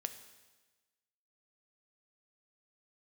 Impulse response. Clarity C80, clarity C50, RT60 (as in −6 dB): 13.0 dB, 11.0 dB, 1.2 s